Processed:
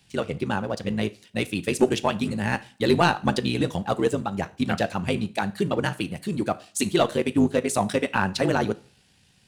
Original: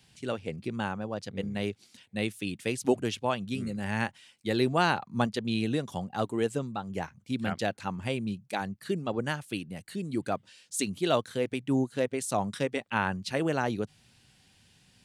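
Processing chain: sample leveller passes 1; two-slope reverb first 0.62 s, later 1.8 s, from -28 dB, DRR 12.5 dB; granular stretch 0.63×, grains 37 ms; gain +4 dB

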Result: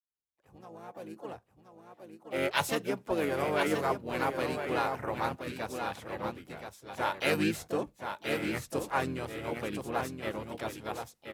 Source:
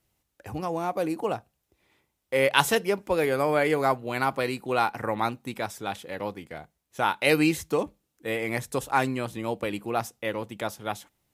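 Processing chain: opening faded in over 3.12 s; echo 1.026 s -6.5 dB; harmoniser -7 st -5 dB, +3 st -9 dB, +7 st -14 dB; gain -8 dB

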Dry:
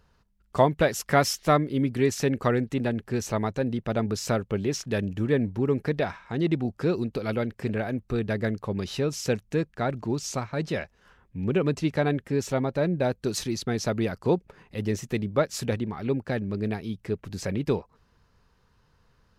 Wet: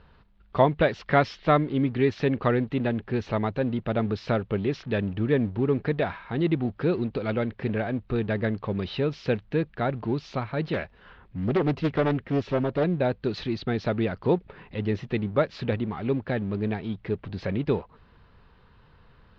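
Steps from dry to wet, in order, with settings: G.711 law mismatch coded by mu; steep low-pass 4000 Hz 36 dB/oct; 10.73–12.84 Doppler distortion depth 0.54 ms

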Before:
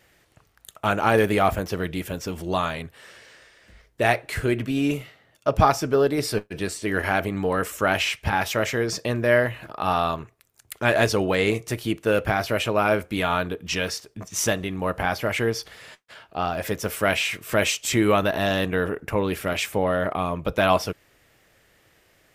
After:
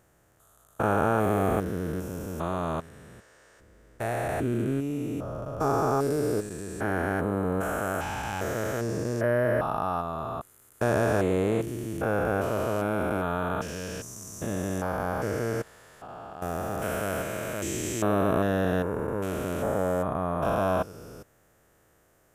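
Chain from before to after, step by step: stepped spectrum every 0.4 s; band shelf 3100 Hz -11 dB

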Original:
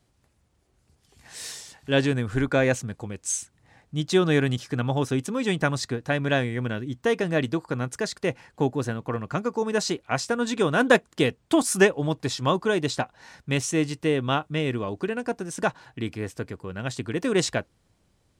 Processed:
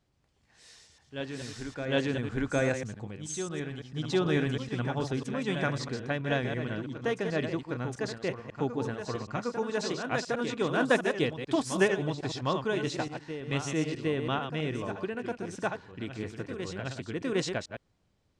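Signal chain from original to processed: reverse delay 0.109 s, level -7 dB; LPF 6200 Hz 12 dB/oct; reverse echo 0.759 s -8.5 dB; gain -7 dB

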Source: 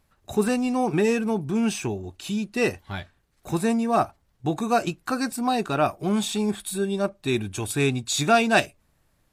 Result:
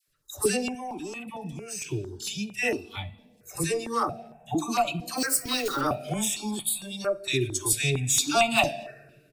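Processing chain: 5.17–5.81 zero-crossing step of -32.5 dBFS; reverb RT60 2.0 s, pre-delay 7 ms, DRR 10 dB; soft clip -12 dBFS, distortion -19 dB; bell 5200 Hz +2.5 dB 0.2 oct; spectral noise reduction 9 dB; high shelf 3300 Hz +10.5 dB; 0.67–1.84 level quantiser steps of 16 dB; dispersion lows, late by 79 ms, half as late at 1000 Hz; speakerphone echo 0.23 s, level -27 dB; step phaser 4.4 Hz 220–1600 Hz

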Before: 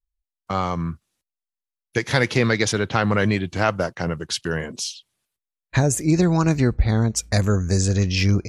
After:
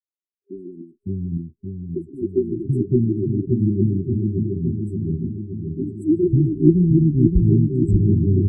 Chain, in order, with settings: 0.81–2 tone controls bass -11 dB, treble +9 dB; three bands offset in time mids, highs, lows 50/560 ms, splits 300/3100 Hz; in parallel at -5 dB: wavefolder -14 dBFS; on the sum: LFO low-pass sine 7 Hz 320–2500 Hz; FFT band-reject 400–7600 Hz; on a send: analogue delay 0.572 s, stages 2048, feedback 62%, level -5 dB; on the sum: gain -1 dB

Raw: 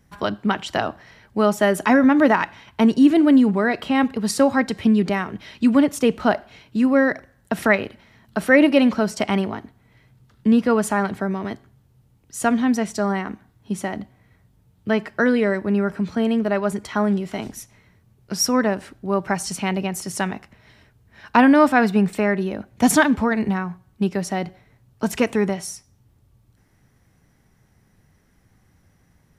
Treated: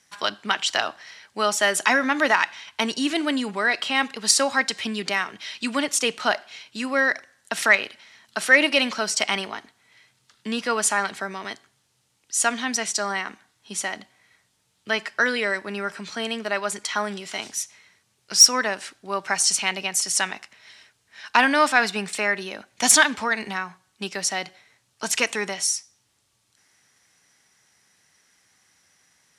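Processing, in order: weighting filter ITU-R 468; in parallel at -3.5 dB: soft clip -6.5 dBFS, distortion -16 dB; on the sum: gain -5.5 dB

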